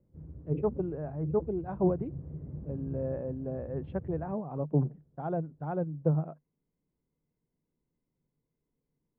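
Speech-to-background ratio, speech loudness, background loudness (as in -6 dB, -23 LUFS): 11.0 dB, -33.5 LUFS, -44.5 LUFS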